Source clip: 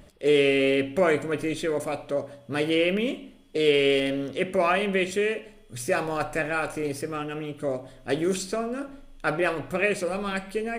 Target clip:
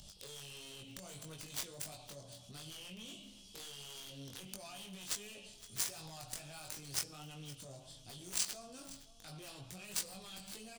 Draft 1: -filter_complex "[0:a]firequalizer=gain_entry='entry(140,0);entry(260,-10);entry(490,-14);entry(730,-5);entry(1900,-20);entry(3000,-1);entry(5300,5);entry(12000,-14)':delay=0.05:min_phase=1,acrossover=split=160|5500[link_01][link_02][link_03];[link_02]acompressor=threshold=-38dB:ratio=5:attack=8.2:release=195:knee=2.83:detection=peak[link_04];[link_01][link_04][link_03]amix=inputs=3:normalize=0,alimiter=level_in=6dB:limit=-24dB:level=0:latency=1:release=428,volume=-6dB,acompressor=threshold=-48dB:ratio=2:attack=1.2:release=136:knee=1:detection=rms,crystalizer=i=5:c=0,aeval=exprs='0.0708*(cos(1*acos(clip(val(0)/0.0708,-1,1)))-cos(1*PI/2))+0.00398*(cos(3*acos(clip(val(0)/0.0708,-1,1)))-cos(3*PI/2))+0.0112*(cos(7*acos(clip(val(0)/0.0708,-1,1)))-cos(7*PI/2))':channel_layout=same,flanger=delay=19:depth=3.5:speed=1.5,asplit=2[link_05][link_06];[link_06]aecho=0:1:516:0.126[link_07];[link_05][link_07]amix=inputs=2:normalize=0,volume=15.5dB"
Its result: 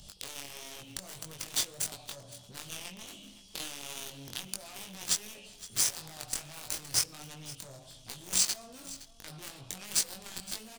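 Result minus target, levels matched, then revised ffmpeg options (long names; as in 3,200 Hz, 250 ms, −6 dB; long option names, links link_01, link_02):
downward compressor: peak gain reduction −4.5 dB
-filter_complex "[0:a]firequalizer=gain_entry='entry(140,0);entry(260,-10);entry(490,-14);entry(730,-5);entry(1900,-20);entry(3000,-1);entry(5300,5);entry(12000,-14)':delay=0.05:min_phase=1,acrossover=split=160|5500[link_01][link_02][link_03];[link_02]acompressor=threshold=-38dB:ratio=5:attack=8.2:release=195:knee=2.83:detection=peak[link_04];[link_01][link_04][link_03]amix=inputs=3:normalize=0,alimiter=level_in=6dB:limit=-24dB:level=0:latency=1:release=428,volume=-6dB,acompressor=threshold=-56.5dB:ratio=2:attack=1.2:release=136:knee=1:detection=rms,crystalizer=i=5:c=0,aeval=exprs='0.0708*(cos(1*acos(clip(val(0)/0.0708,-1,1)))-cos(1*PI/2))+0.00398*(cos(3*acos(clip(val(0)/0.0708,-1,1)))-cos(3*PI/2))+0.0112*(cos(7*acos(clip(val(0)/0.0708,-1,1)))-cos(7*PI/2))':channel_layout=same,flanger=delay=19:depth=3.5:speed=1.5,asplit=2[link_05][link_06];[link_06]aecho=0:1:516:0.126[link_07];[link_05][link_07]amix=inputs=2:normalize=0,volume=15.5dB"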